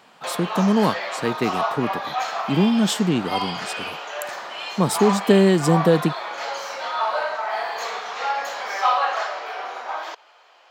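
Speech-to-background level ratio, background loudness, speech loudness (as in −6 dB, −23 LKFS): 6.0 dB, −27.0 LKFS, −21.0 LKFS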